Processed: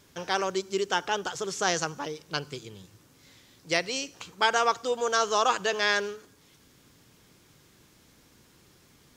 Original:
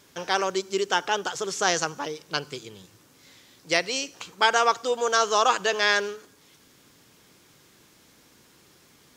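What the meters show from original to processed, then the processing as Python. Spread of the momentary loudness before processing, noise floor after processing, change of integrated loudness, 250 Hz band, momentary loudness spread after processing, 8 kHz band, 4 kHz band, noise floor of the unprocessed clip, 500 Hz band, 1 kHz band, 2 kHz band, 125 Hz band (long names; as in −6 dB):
13 LU, −60 dBFS, −3.0 dB, −1.5 dB, 13 LU, −3.5 dB, −3.5 dB, −58 dBFS, −2.5 dB, −3.5 dB, −3.5 dB, +1.0 dB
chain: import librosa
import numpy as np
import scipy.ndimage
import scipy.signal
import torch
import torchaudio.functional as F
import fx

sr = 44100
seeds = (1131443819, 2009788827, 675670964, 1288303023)

y = fx.low_shelf(x, sr, hz=140.0, db=10.5)
y = y * librosa.db_to_amplitude(-3.5)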